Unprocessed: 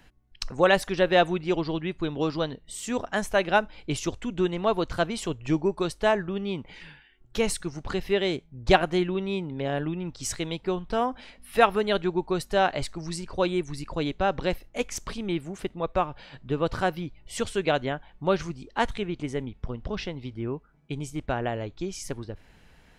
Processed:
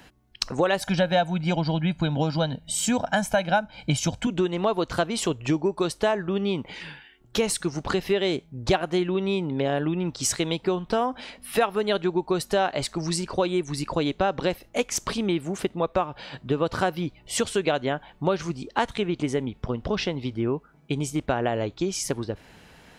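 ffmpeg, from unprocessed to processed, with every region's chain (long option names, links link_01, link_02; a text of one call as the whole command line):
ffmpeg -i in.wav -filter_complex "[0:a]asettb=1/sr,asplit=3[link_01][link_02][link_03];[link_01]atrim=end=0.814[link_04];[link_02]atrim=start=0.81:end=4.27,asetpts=PTS-STARTPTS,afade=type=in:duration=0.004:curve=qsin,afade=type=out:start_time=3.456:duration=0.004:curve=qsin,equalizer=frequency=160:width=0.95:gain=6,aecho=1:1:1.3:0.81,atrim=end_sample=152586[link_05];[link_03]atrim=start=4.266[link_06];[link_04][link_05]acrossfade=duration=0.004:curve1=hsin:curve2=qsin[link_07];[link_07][link_06]acrossfade=duration=0.004:curve1=qsin:curve2=hsin,highpass=frequency=150:poles=1,equalizer=frequency=2000:width=1.5:gain=-2.5,acompressor=threshold=-30dB:ratio=4,volume=9dB" out.wav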